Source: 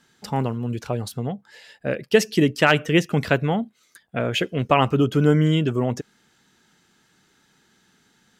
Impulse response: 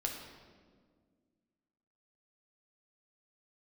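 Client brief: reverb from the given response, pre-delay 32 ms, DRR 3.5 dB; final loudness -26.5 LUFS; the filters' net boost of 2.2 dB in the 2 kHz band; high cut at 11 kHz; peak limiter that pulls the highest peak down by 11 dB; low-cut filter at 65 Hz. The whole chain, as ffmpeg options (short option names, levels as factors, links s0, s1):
-filter_complex "[0:a]highpass=65,lowpass=11000,equalizer=f=2000:t=o:g=3,alimiter=limit=0.266:level=0:latency=1,asplit=2[s0][s1];[1:a]atrim=start_sample=2205,adelay=32[s2];[s1][s2]afir=irnorm=-1:irlink=0,volume=0.531[s3];[s0][s3]amix=inputs=2:normalize=0,volume=0.668"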